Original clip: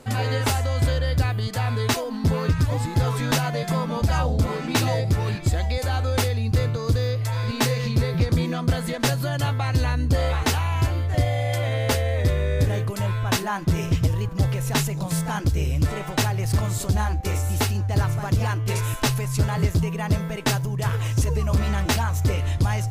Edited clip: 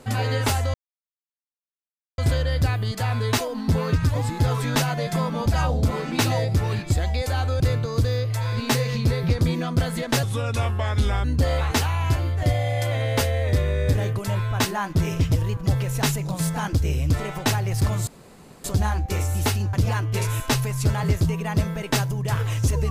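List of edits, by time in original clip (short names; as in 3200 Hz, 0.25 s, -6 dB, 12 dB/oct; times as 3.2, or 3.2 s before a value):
0.74 insert silence 1.44 s
6.16–6.51 cut
9.14–9.96 speed 81%
16.79 insert room tone 0.57 s
17.88–18.27 cut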